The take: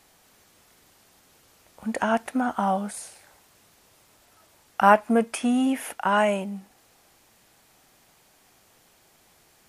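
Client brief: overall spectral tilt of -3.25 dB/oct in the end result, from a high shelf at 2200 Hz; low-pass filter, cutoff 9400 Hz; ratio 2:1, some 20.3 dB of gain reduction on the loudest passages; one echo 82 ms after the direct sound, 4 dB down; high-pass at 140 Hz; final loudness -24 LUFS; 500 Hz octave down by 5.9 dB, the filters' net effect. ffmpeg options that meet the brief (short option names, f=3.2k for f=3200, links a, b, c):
-af "highpass=140,lowpass=9.4k,equalizer=f=500:t=o:g=-8.5,highshelf=f=2.2k:g=4,acompressor=threshold=-51dB:ratio=2,aecho=1:1:82:0.631,volume=18dB"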